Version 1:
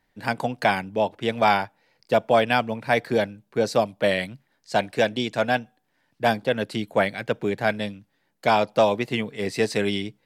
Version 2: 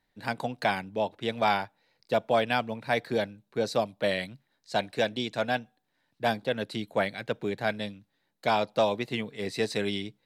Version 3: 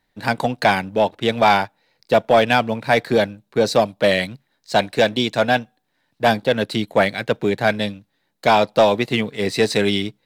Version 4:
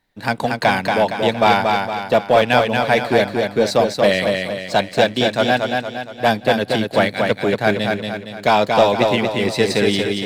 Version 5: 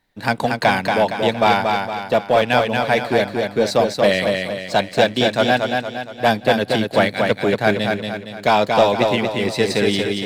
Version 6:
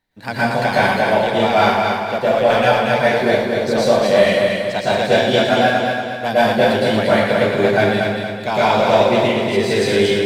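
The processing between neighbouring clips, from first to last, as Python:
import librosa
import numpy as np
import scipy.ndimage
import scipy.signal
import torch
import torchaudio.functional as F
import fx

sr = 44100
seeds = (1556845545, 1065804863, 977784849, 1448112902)

y1 = fx.peak_eq(x, sr, hz=3900.0, db=8.5, octaves=0.2)
y1 = y1 * 10.0 ** (-6.0 / 20.0)
y2 = fx.leveller(y1, sr, passes=1)
y2 = y2 * 10.0 ** (8.0 / 20.0)
y3 = fx.echo_feedback(y2, sr, ms=232, feedback_pct=47, wet_db=-4)
y4 = fx.rider(y3, sr, range_db=3, speed_s=2.0)
y4 = y4 * 10.0 ** (-1.0 / 20.0)
y5 = fx.rev_plate(y4, sr, seeds[0], rt60_s=0.86, hf_ratio=0.8, predelay_ms=100, drr_db=-8.5)
y5 = y5 * 10.0 ** (-7.0 / 20.0)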